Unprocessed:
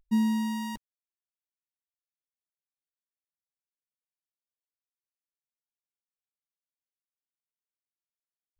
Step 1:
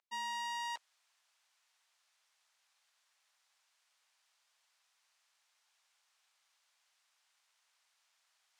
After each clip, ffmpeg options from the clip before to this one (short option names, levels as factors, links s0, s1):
-af "highpass=f=740:w=0.5412,highpass=f=740:w=1.3066,areverse,acompressor=mode=upward:threshold=0.00224:ratio=2.5,areverse,lowpass=6700,volume=1.12"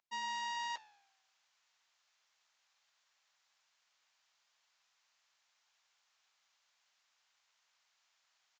-af "aresample=16000,acrusher=bits=5:mode=log:mix=0:aa=0.000001,aresample=44100,flanger=delay=8.6:depth=6.3:regen=-90:speed=0.4:shape=sinusoidal,volume=1.68"